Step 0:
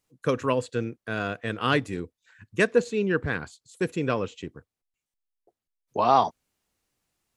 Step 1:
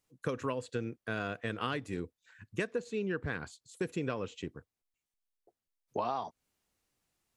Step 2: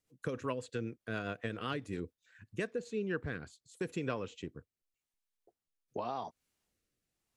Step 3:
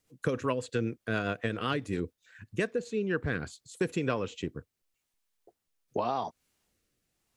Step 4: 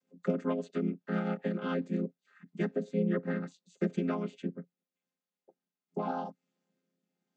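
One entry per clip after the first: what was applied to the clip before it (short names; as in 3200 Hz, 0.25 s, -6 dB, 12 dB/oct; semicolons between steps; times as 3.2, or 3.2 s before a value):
compressor 16:1, threshold -27 dBFS, peak gain reduction 14.5 dB; gain -3 dB
rotary speaker horn 7.5 Hz, later 0.85 Hz, at 2.4
vocal rider within 5 dB 0.5 s; gain +7.5 dB
chord vocoder minor triad, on F3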